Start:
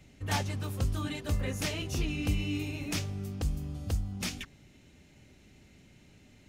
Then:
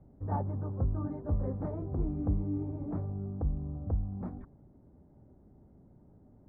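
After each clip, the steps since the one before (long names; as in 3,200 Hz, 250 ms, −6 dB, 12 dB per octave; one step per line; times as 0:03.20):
inverse Chebyshev low-pass filter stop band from 2,600 Hz, stop band 50 dB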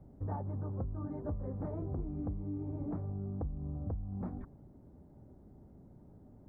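downward compressor 12 to 1, threshold −36 dBFS, peak gain reduction 12.5 dB
level +2 dB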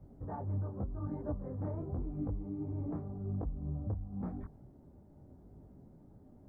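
micro pitch shift up and down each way 31 cents
level +3.5 dB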